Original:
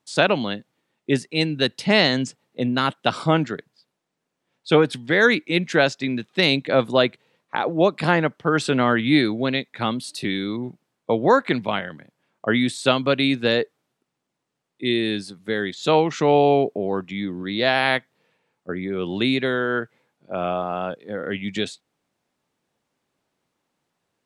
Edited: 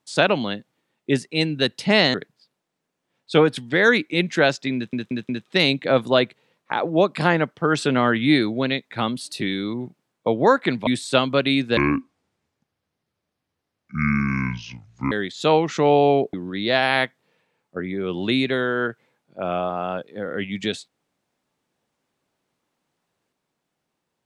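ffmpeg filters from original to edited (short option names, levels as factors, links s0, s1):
-filter_complex "[0:a]asplit=9[s0][s1][s2][s3][s4][s5][s6][s7][s8];[s0]atrim=end=2.142[s9];[s1]atrim=start=3.508:end=6.302[s10];[s2]atrim=start=6.118:end=6.302[s11];[s3]atrim=start=6.118:end=6.302[s12];[s4]atrim=start=6.118:end=11.702[s13];[s5]atrim=start=12.598:end=13.504[s14];[s6]atrim=start=13.5:end=15.54,asetpts=PTS-STARTPTS,asetrate=26901,aresample=44100[s15];[s7]atrim=start=15.536:end=16.762[s16];[s8]atrim=start=17.258[s17];[s9][s10]acrossfade=d=0.004:c1=hsin:c2=hsin[s18];[s18][s11]acrossfade=d=0.004:c1=hsin:c2=hsin[s19];[s19][s12]acrossfade=d=0.004:c1=hsin:c2=hsin[s20];[s20][s13]acrossfade=d=0.004:c1=hsin:c2=hsin[s21];[s21][s14]acrossfade=d=0.004:c1=hsin:c2=hsin[s22];[s22][s15]acrossfade=d=0.004:c1=hsin:c2=hsin[s23];[s23][s16]acrossfade=d=0.004:c1=hsin:c2=hsin[s24];[s24][s17]acrossfade=d=0.004:c1=hsin:c2=hsin"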